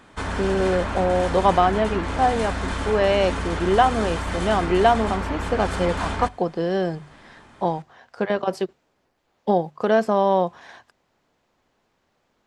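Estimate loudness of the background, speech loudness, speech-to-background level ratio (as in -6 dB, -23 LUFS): -28.0 LUFS, -22.5 LUFS, 5.5 dB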